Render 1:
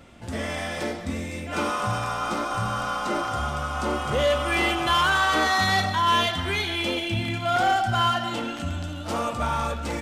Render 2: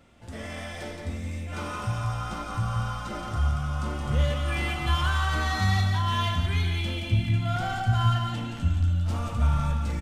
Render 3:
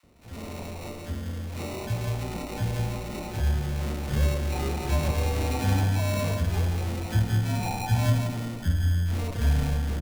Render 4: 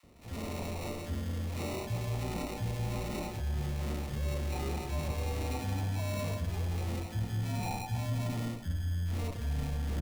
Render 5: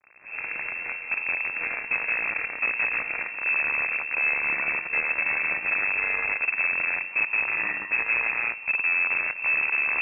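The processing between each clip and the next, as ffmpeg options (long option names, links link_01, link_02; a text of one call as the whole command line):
ffmpeg -i in.wav -filter_complex "[0:a]asubboost=boost=10:cutoff=130,asplit=2[link_01][link_02];[link_02]aecho=0:1:40.82|172:0.282|0.562[link_03];[link_01][link_03]amix=inputs=2:normalize=0,volume=-8.5dB" out.wav
ffmpeg -i in.wav -filter_complex "[0:a]acrusher=samples=27:mix=1:aa=0.000001,acrossover=split=1100[link_01][link_02];[link_01]adelay=30[link_03];[link_03][link_02]amix=inputs=2:normalize=0" out.wav
ffmpeg -i in.wav -af "areverse,acompressor=threshold=-31dB:ratio=6,areverse,bandreject=frequency=1500:width=12" out.wav
ffmpeg -i in.wav -af "acrusher=bits=6:dc=4:mix=0:aa=0.000001,lowpass=frequency=2300:width_type=q:width=0.5098,lowpass=frequency=2300:width_type=q:width=0.6013,lowpass=frequency=2300:width_type=q:width=0.9,lowpass=frequency=2300:width_type=q:width=2.563,afreqshift=-2700,volume=7dB" out.wav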